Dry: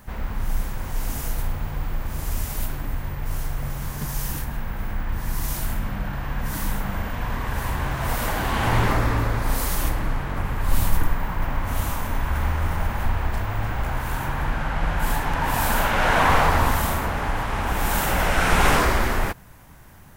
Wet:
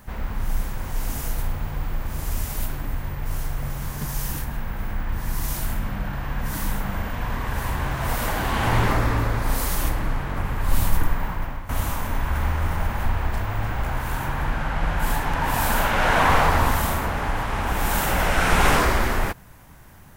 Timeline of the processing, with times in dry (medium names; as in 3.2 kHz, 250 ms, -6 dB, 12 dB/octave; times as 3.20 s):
11.26–11.69 s: fade out, to -13 dB